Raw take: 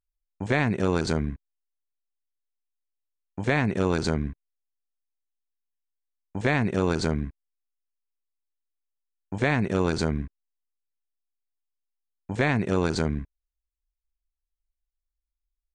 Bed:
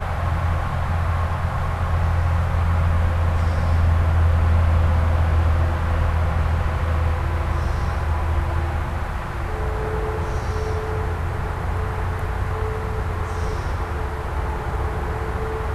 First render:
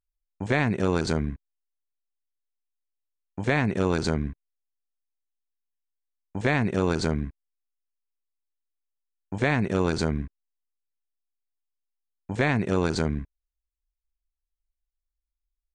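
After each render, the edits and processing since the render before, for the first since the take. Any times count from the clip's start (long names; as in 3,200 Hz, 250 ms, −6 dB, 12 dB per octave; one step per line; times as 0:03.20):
no processing that can be heard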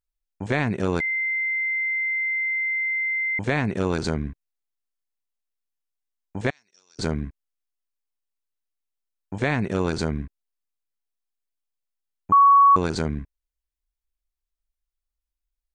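0:01.00–0:03.39: beep over 2,080 Hz −22 dBFS
0:06.50–0:06.99: resonant band-pass 5,500 Hz, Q 14
0:12.32–0:12.76: beep over 1,120 Hz −10.5 dBFS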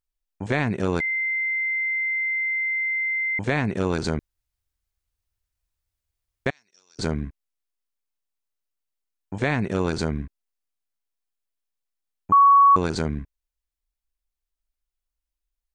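0:04.19–0:06.46: fill with room tone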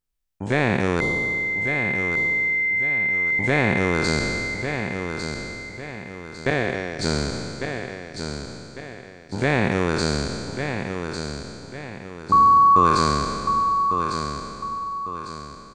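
peak hold with a decay on every bin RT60 2.17 s
on a send: repeating echo 1,151 ms, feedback 38%, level −7 dB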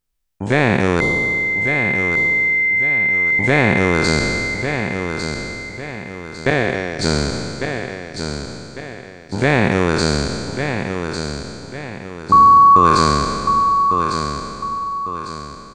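level +5.5 dB
brickwall limiter −1 dBFS, peak gain reduction 2 dB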